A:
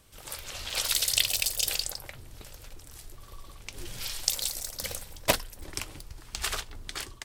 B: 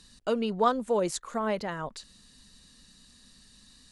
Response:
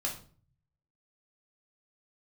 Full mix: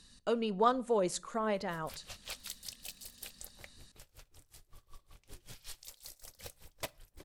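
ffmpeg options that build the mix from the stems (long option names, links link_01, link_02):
-filter_complex "[0:a]acompressor=threshold=-30dB:ratio=12,aeval=exprs='val(0)*pow(10,-26*(0.5-0.5*cos(2*PI*5.3*n/s))/20)':channel_layout=same,adelay=1550,volume=-6.5dB,asplit=2[link_01][link_02];[link_02]volume=-21.5dB[link_03];[1:a]volume=-4.5dB,asplit=2[link_04][link_05];[link_05]volume=-19.5dB[link_06];[2:a]atrim=start_sample=2205[link_07];[link_03][link_06]amix=inputs=2:normalize=0[link_08];[link_08][link_07]afir=irnorm=-1:irlink=0[link_09];[link_01][link_04][link_09]amix=inputs=3:normalize=0"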